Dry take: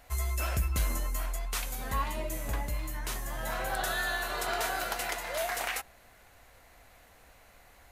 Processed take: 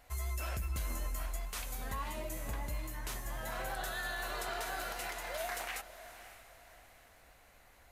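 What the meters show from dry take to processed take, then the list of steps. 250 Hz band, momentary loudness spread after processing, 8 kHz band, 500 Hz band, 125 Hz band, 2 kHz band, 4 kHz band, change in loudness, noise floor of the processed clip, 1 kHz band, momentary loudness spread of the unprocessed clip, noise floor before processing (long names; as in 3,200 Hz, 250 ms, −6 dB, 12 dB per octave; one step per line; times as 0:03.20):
−6.0 dB, 14 LU, −6.5 dB, −6.0 dB, −6.5 dB, −6.5 dB, −6.5 dB, −6.5 dB, −62 dBFS, −6.5 dB, 6 LU, −58 dBFS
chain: pitch vibrato 8.1 Hz 19 cents
brickwall limiter −24.5 dBFS, peak gain reduction 6 dB
feedback delay with all-pass diffusion 556 ms, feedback 41%, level −13.5 dB
level −5 dB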